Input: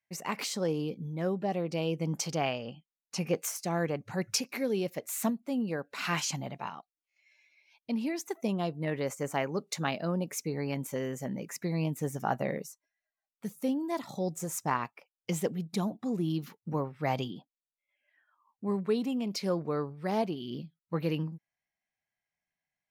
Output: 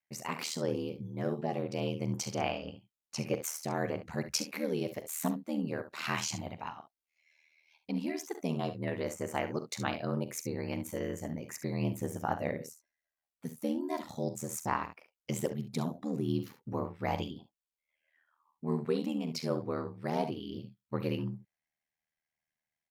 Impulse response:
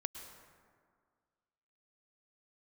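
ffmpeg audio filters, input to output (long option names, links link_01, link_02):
-af "aecho=1:1:44|69:0.224|0.251,aeval=exprs='val(0)*sin(2*PI*39*n/s)':channel_layout=same"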